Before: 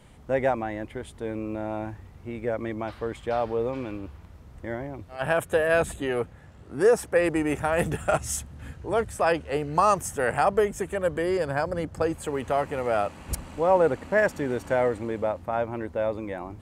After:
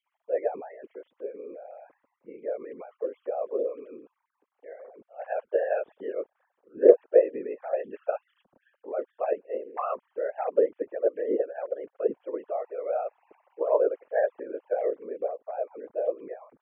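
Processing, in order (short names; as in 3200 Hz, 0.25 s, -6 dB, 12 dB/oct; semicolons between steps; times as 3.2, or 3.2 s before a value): sine-wave speech; whisperiser; ten-band EQ 250 Hz +5 dB, 500 Hz +12 dB, 1000 Hz +3 dB; gain -14 dB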